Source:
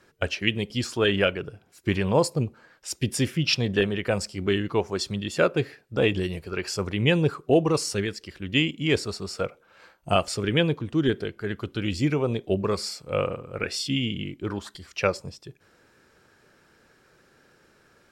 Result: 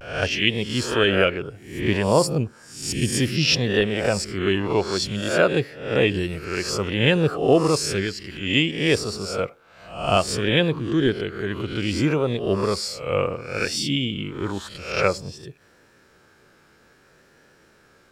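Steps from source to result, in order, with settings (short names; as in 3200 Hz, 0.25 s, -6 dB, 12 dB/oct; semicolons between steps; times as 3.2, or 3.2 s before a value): spectral swells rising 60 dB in 0.59 s; vibrato 0.59 Hz 52 cents; gain +1.5 dB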